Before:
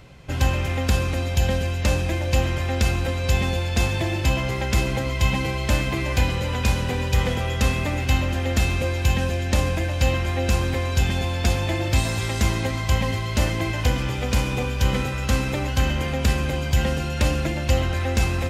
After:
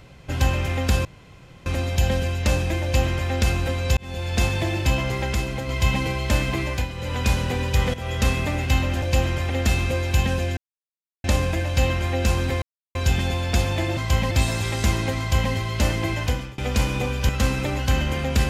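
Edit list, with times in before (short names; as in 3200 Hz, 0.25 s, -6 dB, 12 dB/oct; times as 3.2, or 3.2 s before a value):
1.05 insert room tone 0.61 s
2.22–2.7 copy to 8.41
3.36–3.74 fade in
4.73–5.08 gain -4 dB
5.94–6.66 dip -9 dB, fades 0.32 s equal-power
7.33–7.64 fade in equal-power, from -13.5 dB
9.48 insert silence 0.67 s
10.86 insert silence 0.33 s
12.76–13.1 copy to 11.88
13.76–14.15 fade out, to -23.5 dB
14.86–15.18 cut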